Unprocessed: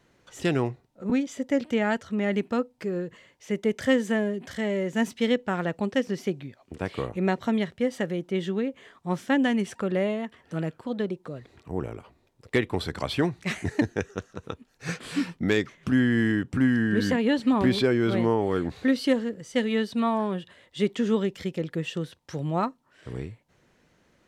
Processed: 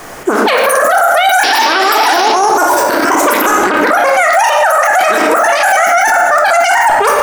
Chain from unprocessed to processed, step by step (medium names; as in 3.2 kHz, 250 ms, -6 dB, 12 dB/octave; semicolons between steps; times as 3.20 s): reverse the whole clip; peaking EQ 1.3 kHz -7 dB 1.2 oct; wide varispeed 3.36×; painted sound noise, 1.43–2.31 s, 240–5800 Hz -31 dBFS; on a send at -2 dB: reverberation RT60 0.95 s, pre-delay 3 ms; on the sum: loudness maximiser +35 dB; trim -1 dB